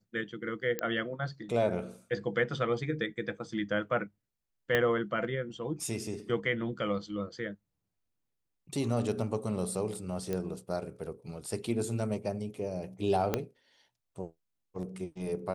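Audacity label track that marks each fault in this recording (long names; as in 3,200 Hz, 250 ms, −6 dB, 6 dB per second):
0.790000	0.790000	click −16 dBFS
4.750000	4.750000	click −14 dBFS
10.330000	10.330000	click −20 dBFS
13.340000	13.340000	click −14 dBFS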